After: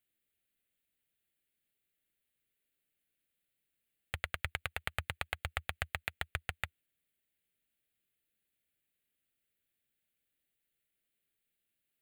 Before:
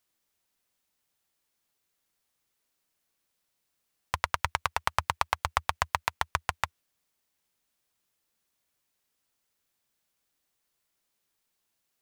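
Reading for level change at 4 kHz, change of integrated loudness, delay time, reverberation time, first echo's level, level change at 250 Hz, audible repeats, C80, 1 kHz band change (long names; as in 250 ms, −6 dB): −6.5 dB, −8.5 dB, no echo audible, no reverb audible, no echo audible, −4.0 dB, no echo audible, no reverb audible, −16.5 dB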